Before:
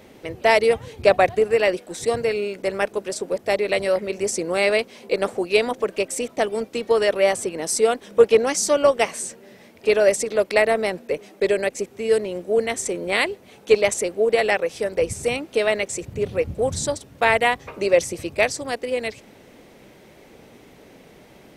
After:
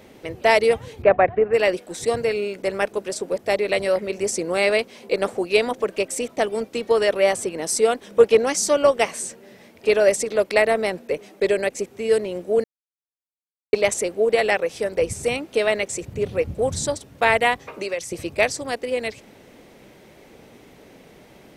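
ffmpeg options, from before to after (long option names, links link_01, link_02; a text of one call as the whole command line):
ffmpeg -i in.wav -filter_complex "[0:a]asplit=3[link_01][link_02][link_03];[link_01]afade=type=out:start_time=1.02:duration=0.02[link_04];[link_02]lowpass=frequency=2200:width=0.5412,lowpass=frequency=2200:width=1.3066,afade=type=in:start_time=1.02:duration=0.02,afade=type=out:start_time=1.53:duration=0.02[link_05];[link_03]afade=type=in:start_time=1.53:duration=0.02[link_06];[link_04][link_05][link_06]amix=inputs=3:normalize=0,asettb=1/sr,asplit=3[link_07][link_08][link_09];[link_07]atrim=end=17.574[link_10];[link_08]atrim=start=17.57:end=18.12,asetpts=PTS-STARTPTS,afade=type=in:duration=0.004:curve=qsin,afade=type=out:start_time=0.546:duration=0.004:curve=qsin,acrossover=split=170|970[link_11][link_12][link_13];[link_11]acompressor=threshold=-55dB:ratio=4[link_14];[link_12]acompressor=threshold=-29dB:ratio=4[link_15];[link_13]acompressor=threshold=-30dB:ratio=4[link_16];[link_14][link_15][link_16]amix=inputs=3:normalize=0[link_17];[link_09]atrim=start=18.116[link_18];[link_10][link_17]acrossfade=duration=0.004:curve1=hsin:curve2=qsin[link_19];[link_19][link_18]acrossfade=duration=0.004:curve1=qsin:curve2=hsin,asplit=3[link_20][link_21][link_22];[link_20]atrim=end=12.64,asetpts=PTS-STARTPTS,afade=type=out:start_time=12.636:duration=0.004:curve=hsin[link_23];[link_21]atrim=start=12.64:end=13.73,asetpts=PTS-STARTPTS,volume=0[link_24];[link_22]atrim=start=13.73,asetpts=PTS-STARTPTS,afade=type=in:duration=0.004:curve=hsin[link_25];[link_23][link_24][link_25]concat=n=3:v=0:a=1" out.wav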